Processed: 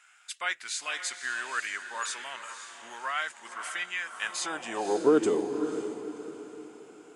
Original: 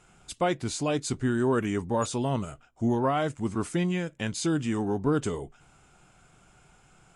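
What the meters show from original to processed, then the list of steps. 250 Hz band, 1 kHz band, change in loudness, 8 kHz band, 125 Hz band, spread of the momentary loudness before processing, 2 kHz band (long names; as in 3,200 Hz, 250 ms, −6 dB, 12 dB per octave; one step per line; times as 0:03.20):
−6.5 dB, −3.0 dB, −3.0 dB, +1.0 dB, −23.0 dB, 7 LU, +6.0 dB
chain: feedback delay with all-pass diffusion 534 ms, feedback 40%, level −9 dB
high-pass filter sweep 1,700 Hz → 350 Hz, 0:04.03–0:05.21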